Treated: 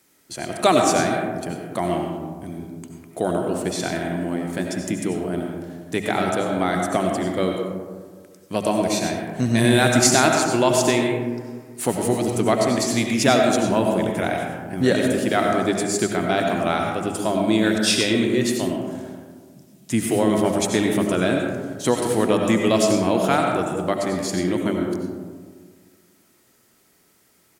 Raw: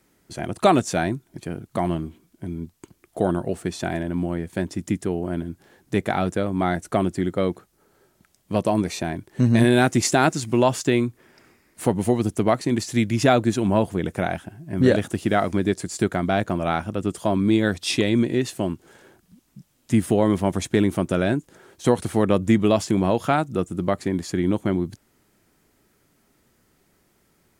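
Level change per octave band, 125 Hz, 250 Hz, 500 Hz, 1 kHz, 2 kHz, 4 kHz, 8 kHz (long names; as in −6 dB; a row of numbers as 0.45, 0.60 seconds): −2.5, +0.5, +2.5, +2.5, +3.5, +6.0, +7.5 decibels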